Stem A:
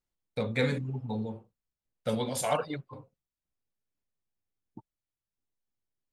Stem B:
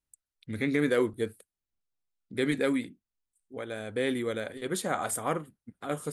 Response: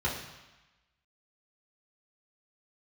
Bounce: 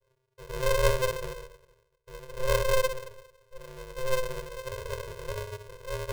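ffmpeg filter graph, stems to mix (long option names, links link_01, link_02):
-filter_complex "[0:a]volume=-11dB,asplit=2[link_01][link_02];[link_02]volume=-16dB[link_03];[1:a]bandreject=frequency=60:width_type=h:width=6,bandreject=frequency=120:width_type=h:width=6,bandreject=frequency=180:width_type=h:width=6,bandreject=frequency=240:width_type=h:width=6,acompressor=mode=upward:threshold=-47dB:ratio=2.5,volume=-3dB,asplit=2[link_04][link_05];[link_05]volume=-3.5dB[link_06];[2:a]atrim=start_sample=2205[link_07];[link_03][link_06]amix=inputs=2:normalize=0[link_08];[link_08][link_07]afir=irnorm=-1:irlink=0[link_09];[link_01][link_04][link_09]amix=inputs=3:normalize=0,asuperpass=centerf=190:order=20:qfactor=1,aeval=exprs='val(0)*sgn(sin(2*PI*260*n/s))':channel_layout=same"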